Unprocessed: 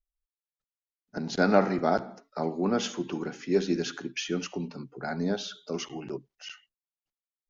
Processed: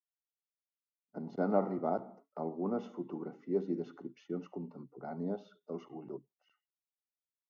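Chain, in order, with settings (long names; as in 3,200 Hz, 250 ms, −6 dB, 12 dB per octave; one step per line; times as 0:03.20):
Savitzky-Golay smoothing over 65 samples
noise gate −53 dBFS, range −9 dB
high-pass filter 140 Hz 12 dB per octave
level −7.5 dB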